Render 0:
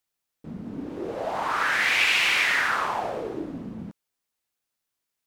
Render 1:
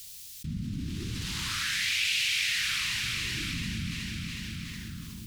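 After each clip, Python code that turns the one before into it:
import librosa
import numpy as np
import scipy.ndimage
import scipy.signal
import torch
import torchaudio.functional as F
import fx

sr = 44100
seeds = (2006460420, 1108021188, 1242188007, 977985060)

y = scipy.signal.sosfilt(scipy.signal.cheby1(2, 1.0, [100.0, 3900.0], 'bandstop', fs=sr, output='sos'), x)
y = fx.echo_feedback(y, sr, ms=367, feedback_pct=50, wet_db=-9.0)
y = fx.env_flatten(y, sr, amount_pct=70)
y = y * 10.0 ** (-1.0 / 20.0)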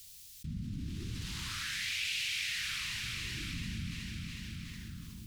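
y = fx.low_shelf(x, sr, hz=110.0, db=6.0)
y = y * 10.0 ** (-7.5 / 20.0)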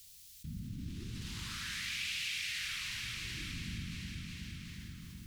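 y = fx.echo_heads(x, sr, ms=86, heads='second and third', feedback_pct=62, wet_db=-11)
y = y * 10.0 ** (-3.5 / 20.0)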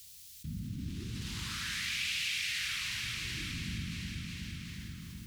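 y = scipy.signal.sosfilt(scipy.signal.butter(2, 42.0, 'highpass', fs=sr, output='sos'), x)
y = y * 10.0 ** (3.5 / 20.0)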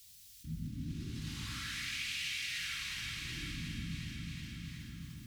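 y = fx.room_shoebox(x, sr, seeds[0], volume_m3=740.0, walls='furnished', distance_m=2.3)
y = y * 10.0 ** (-6.5 / 20.0)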